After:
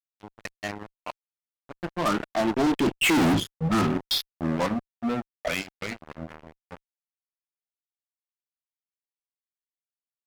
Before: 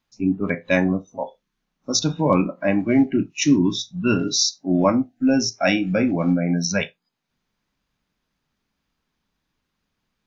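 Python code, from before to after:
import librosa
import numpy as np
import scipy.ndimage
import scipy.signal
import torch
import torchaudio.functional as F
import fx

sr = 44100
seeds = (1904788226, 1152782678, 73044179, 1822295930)

y = fx.doppler_pass(x, sr, speed_mps=36, closest_m=1.8, pass_at_s=3.21)
y = fx.filter_lfo_lowpass(y, sr, shape='saw_down', hz=0.73, low_hz=760.0, high_hz=3300.0, q=3.8)
y = fx.fuzz(y, sr, gain_db=45.0, gate_db=-50.0)
y = F.gain(torch.from_numpy(y), -6.0).numpy()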